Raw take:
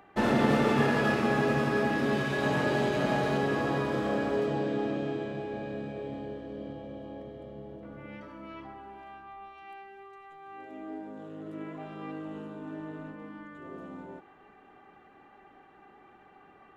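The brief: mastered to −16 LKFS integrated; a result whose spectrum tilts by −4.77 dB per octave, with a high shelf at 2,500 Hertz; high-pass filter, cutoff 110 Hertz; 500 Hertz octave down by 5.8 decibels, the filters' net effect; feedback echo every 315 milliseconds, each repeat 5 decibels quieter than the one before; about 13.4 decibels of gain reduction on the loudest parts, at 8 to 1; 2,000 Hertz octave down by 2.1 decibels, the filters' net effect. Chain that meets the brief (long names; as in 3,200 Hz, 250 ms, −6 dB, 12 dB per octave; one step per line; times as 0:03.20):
high-pass filter 110 Hz
parametric band 500 Hz −7.5 dB
parametric band 2,000 Hz −4 dB
high-shelf EQ 2,500 Hz +4.5 dB
downward compressor 8 to 1, threshold −37 dBFS
repeating echo 315 ms, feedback 56%, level −5 dB
level +25 dB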